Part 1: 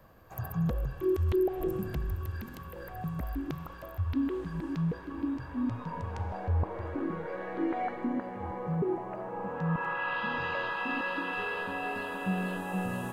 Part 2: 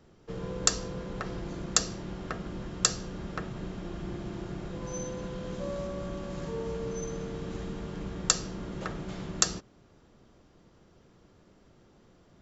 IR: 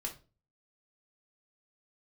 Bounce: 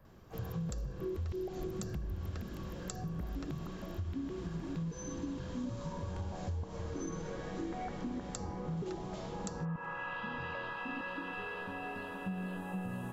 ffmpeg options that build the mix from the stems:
-filter_complex "[0:a]bass=f=250:g=6,treble=f=4k:g=-2,volume=-7dB[a];[1:a]acrossover=split=240|710|3000[b][c][d][e];[b]acompressor=threshold=-42dB:ratio=4[f];[c]acompressor=threshold=-47dB:ratio=4[g];[d]acompressor=threshold=-57dB:ratio=4[h];[e]acompressor=threshold=-45dB:ratio=4[i];[f][g][h][i]amix=inputs=4:normalize=0,adelay=50,volume=-1.5dB[j];[a][j]amix=inputs=2:normalize=0,acompressor=threshold=-35dB:ratio=6"

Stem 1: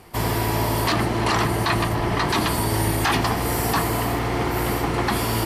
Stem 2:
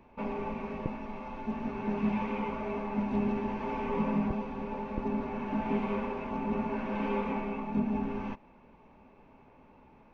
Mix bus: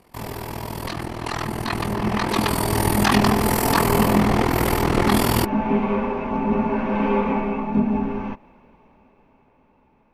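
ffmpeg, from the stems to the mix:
-filter_complex "[0:a]tremolo=f=41:d=0.919,volume=-6dB[a];[1:a]adynamicequalizer=threshold=0.00355:dfrequency=2200:dqfactor=0.7:tfrequency=2200:tqfactor=0.7:attack=5:release=100:ratio=0.375:range=2:mode=cutabove:tftype=highshelf,volume=-2.5dB[b];[a][b]amix=inputs=2:normalize=0,dynaudnorm=f=270:g=17:m=16.5dB"

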